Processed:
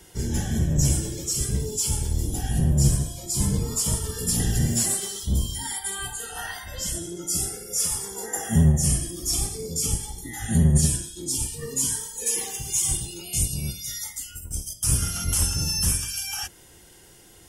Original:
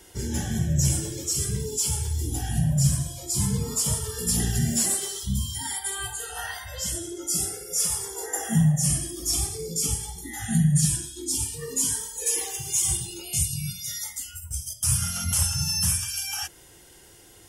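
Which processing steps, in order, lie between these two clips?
sub-octave generator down 1 octave, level −1 dB

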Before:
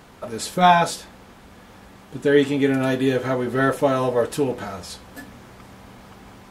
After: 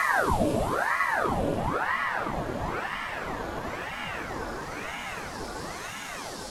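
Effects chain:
extreme stretch with random phases 16×, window 0.50 s, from 0:04.43
ring modulator whose carrier an LFO sweeps 840 Hz, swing 85%, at 1 Hz

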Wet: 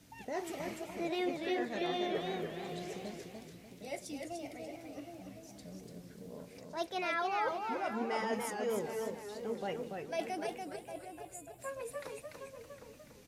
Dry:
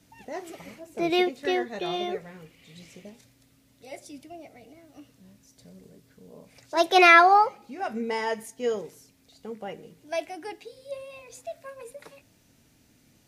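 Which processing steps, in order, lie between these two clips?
gain on a spectral selection 0:10.47–0:11.59, 200–6,800 Hz −19 dB
reversed playback
downward compressor 8 to 1, threshold −33 dBFS, peak gain reduction 22 dB
reversed playback
slap from a distant wall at 130 metres, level −9 dB
feedback echo with a swinging delay time 291 ms, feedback 36%, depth 129 cents, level −4.5 dB

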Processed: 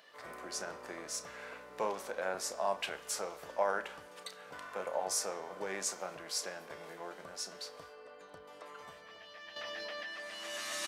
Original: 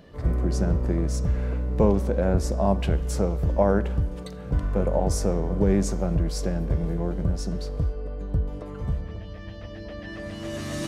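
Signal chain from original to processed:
high-pass filter 1,100 Hz 12 dB per octave
double-tracking delay 32 ms −12.5 dB
0:09.56–0:10.07: envelope flattener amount 100%

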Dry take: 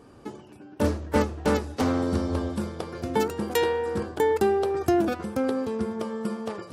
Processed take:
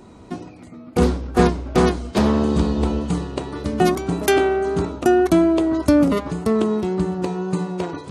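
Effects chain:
tape wow and flutter 24 cents
speed change −17%
level +7 dB

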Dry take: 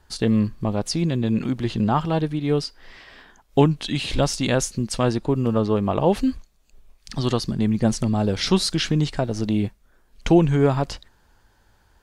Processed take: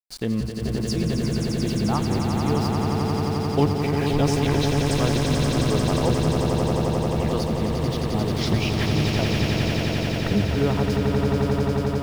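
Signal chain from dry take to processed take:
pitch shifter gated in a rhythm −9 semitones, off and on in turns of 406 ms
centre clipping without the shift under −34.5 dBFS
echo that builds up and dies away 88 ms, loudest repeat 8, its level −6 dB
level −5.5 dB

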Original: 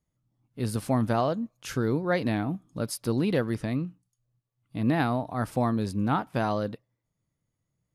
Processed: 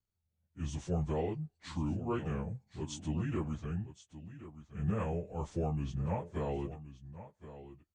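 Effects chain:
phase-vocoder pitch shift without resampling −7 semitones
on a send: single-tap delay 1,072 ms −14 dB
on the sum: level −7.5 dB

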